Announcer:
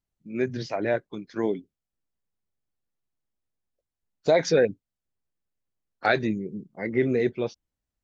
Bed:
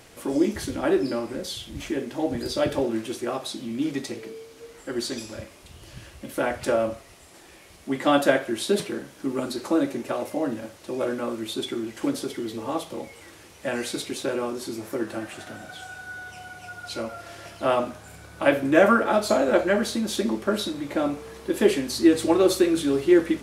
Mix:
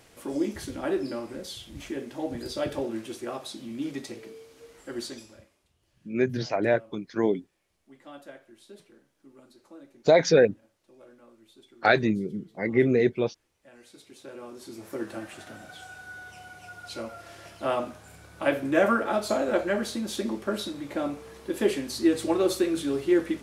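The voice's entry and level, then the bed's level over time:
5.80 s, +2.0 dB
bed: 5.03 s -6 dB
5.75 s -26 dB
13.69 s -26 dB
14.99 s -5 dB

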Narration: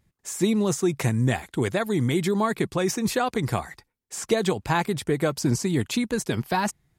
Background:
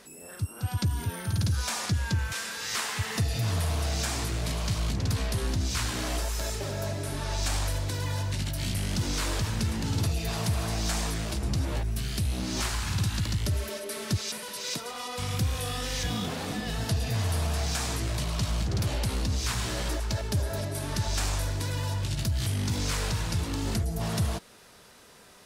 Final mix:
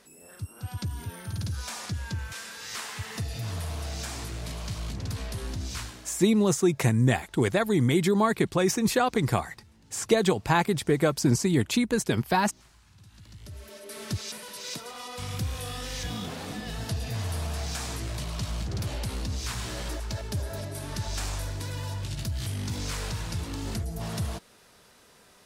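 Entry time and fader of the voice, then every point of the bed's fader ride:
5.80 s, +0.5 dB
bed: 5.79 s -5.5 dB
6.26 s -28 dB
12.95 s -28 dB
14.02 s -3.5 dB

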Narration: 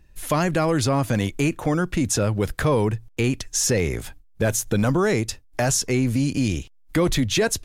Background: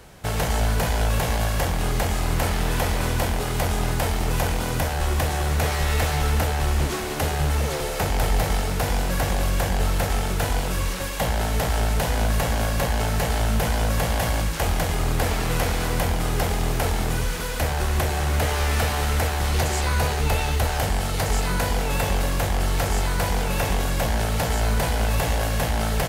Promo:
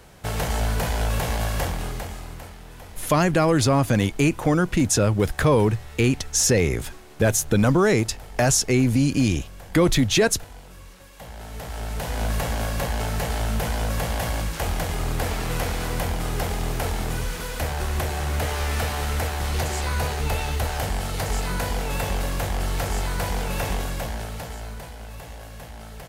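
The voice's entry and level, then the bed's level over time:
2.80 s, +2.0 dB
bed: 1.64 s -2 dB
2.60 s -19.5 dB
11.05 s -19.5 dB
12.27 s -3 dB
23.73 s -3 dB
24.95 s -16.5 dB

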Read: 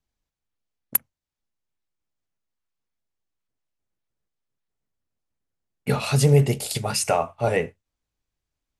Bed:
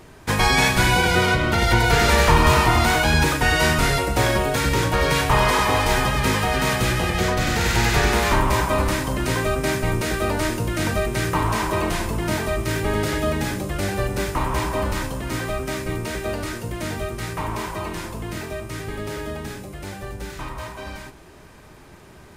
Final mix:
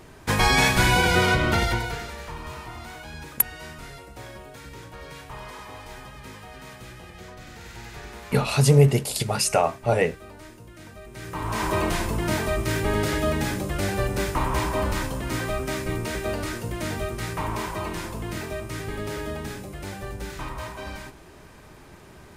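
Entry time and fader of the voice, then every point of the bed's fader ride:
2.45 s, +1.0 dB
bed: 1.56 s -1.5 dB
2.14 s -21.5 dB
11.00 s -21.5 dB
11.67 s -1.5 dB

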